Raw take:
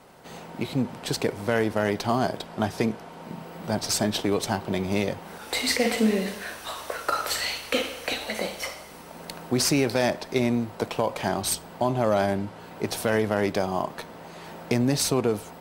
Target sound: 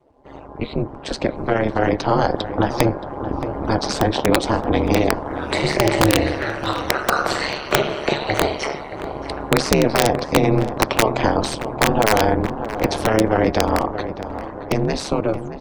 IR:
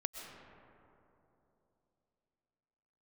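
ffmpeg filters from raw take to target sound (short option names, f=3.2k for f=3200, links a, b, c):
-filter_complex "[0:a]lowpass=9k,afftdn=nr=23:nf=-43,highshelf=f=6.5k:g=-4.5,dynaudnorm=f=310:g=13:m=14dB,asplit=2[a][b];[b]alimiter=limit=-8.5dB:level=0:latency=1:release=39,volume=-1dB[c];[a][c]amix=inputs=2:normalize=0,acrossover=split=100|350|1400|5000[d][e][f][g][h];[d]acompressor=threshold=-38dB:ratio=4[i];[e]acompressor=threshold=-19dB:ratio=4[j];[f]acompressor=threshold=-14dB:ratio=4[k];[g]acompressor=threshold=-29dB:ratio=4[l];[h]acompressor=threshold=-36dB:ratio=4[m];[i][j][k][l][m]amix=inputs=5:normalize=0,aeval=exprs='val(0)*sin(2*PI*110*n/s)':c=same,aeval=exprs='(mod(2.11*val(0)+1,2)-1)/2.11':c=same,tremolo=f=140:d=0.621,asplit=2[n][o];[o]adelay=624,lowpass=f=1.8k:p=1,volume=-11dB,asplit=2[p][q];[q]adelay=624,lowpass=f=1.8k:p=1,volume=0.47,asplit=2[r][s];[s]adelay=624,lowpass=f=1.8k:p=1,volume=0.47,asplit=2[t][u];[u]adelay=624,lowpass=f=1.8k:p=1,volume=0.47,asplit=2[v][w];[w]adelay=624,lowpass=f=1.8k:p=1,volume=0.47[x];[p][r][t][v][x]amix=inputs=5:normalize=0[y];[n][y]amix=inputs=2:normalize=0,volume=4dB"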